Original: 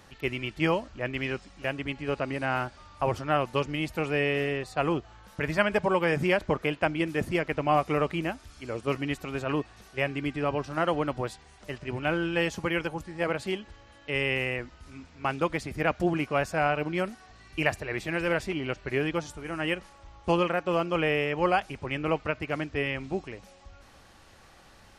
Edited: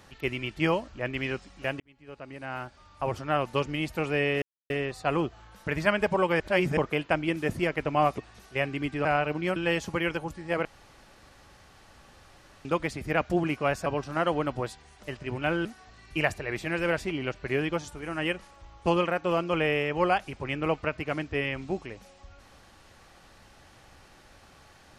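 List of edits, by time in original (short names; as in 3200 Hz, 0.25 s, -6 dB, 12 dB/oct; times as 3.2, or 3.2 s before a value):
1.8–3.57 fade in
4.42 insert silence 0.28 s
6.12–6.49 reverse
7.9–9.6 cut
10.47–12.26 swap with 16.56–17.07
13.35–15.35 room tone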